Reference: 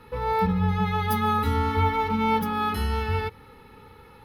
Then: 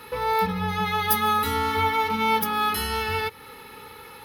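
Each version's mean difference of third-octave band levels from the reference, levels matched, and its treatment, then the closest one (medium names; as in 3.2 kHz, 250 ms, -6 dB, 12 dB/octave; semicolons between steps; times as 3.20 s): 6.0 dB: tilt EQ +3 dB/octave; in parallel at +1.5 dB: compression, threshold -38 dBFS, peak gain reduction 18 dB; on the sum: peaking EQ 400 Hz +2 dB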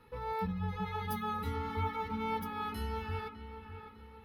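2.5 dB: reverb removal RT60 0.57 s; feedback comb 330 Hz, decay 0.83 s, mix 60%; on a send: feedback echo behind a low-pass 603 ms, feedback 47%, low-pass 3.2 kHz, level -10.5 dB; on the sum: trim -3.5 dB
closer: second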